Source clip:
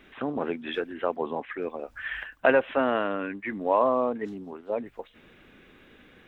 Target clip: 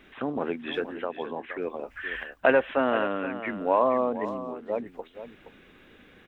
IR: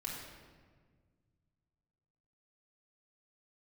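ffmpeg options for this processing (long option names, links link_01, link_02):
-filter_complex "[0:a]asettb=1/sr,asplit=3[link_01][link_02][link_03];[link_01]atrim=end=0.994[link_04];[link_02]atrim=start=0.99:end=1.44,asetpts=PTS-STARTPTS,afade=type=in:duration=0.004:curve=qsin,afade=type=out:start_time=0.446:duration=0.004:curve=qsin,acompressor=threshold=-31dB:ratio=2[link_05];[link_03]atrim=start=1.436[link_06];[link_04][link_05]acrossfade=duration=0.004:curve1=hsin:curve2=qsin[link_07];[link_07][link_06]acrossfade=duration=0.004:curve1=qsin:curve2=hsin,aecho=1:1:471:0.251"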